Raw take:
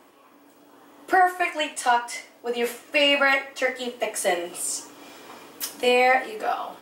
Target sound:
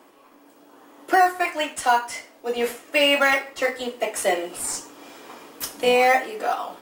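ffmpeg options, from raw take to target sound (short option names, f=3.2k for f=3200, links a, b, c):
-filter_complex "[0:a]highpass=160,asplit=2[a][b];[b]acrusher=samples=11:mix=1:aa=0.000001:lfo=1:lforange=6.6:lforate=0.9,volume=-12dB[c];[a][c]amix=inputs=2:normalize=0"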